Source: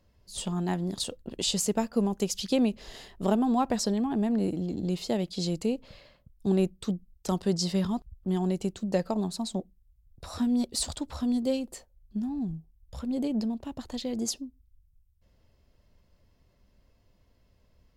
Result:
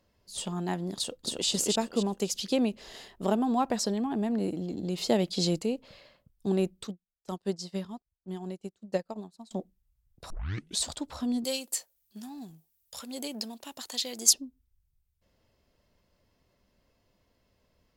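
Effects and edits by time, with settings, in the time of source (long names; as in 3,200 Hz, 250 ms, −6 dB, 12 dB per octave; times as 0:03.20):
0:00.96–0:01.48: delay throw 270 ms, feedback 35%, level −1.5 dB
0:04.98–0:05.59: clip gain +5 dB
0:06.87–0:09.51: expander for the loud parts 2.5 to 1, over −41 dBFS
0:10.30: tape start 0.53 s
0:11.44–0:14.33: spectral tilt +4.5 dB per octave
whole clip: low-shelf EQ 120 Hz −12 dB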